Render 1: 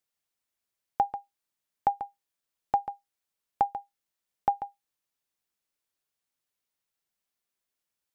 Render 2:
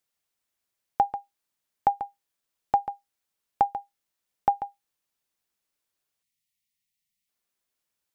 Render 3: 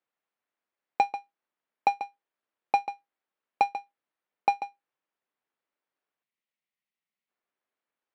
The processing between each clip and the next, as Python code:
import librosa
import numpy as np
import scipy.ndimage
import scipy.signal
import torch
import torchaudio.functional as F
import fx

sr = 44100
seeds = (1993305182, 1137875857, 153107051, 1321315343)

y1 = fx.spec_erase(x, sr, start_s=6.23, length_s=1.06, low_hz=240.0, high_hz=1800.0)
y1 = y1 * 10.0 ** (3.0 / 20.0)
y2 = fx.halfwave_hold(y1, sr)
y2 = fx.bandpass_edges(y2, sr, low_hz=250.0, high_hz=2100.0)
y2 = y2 * 10.0 ** (-3.5 / 20.0)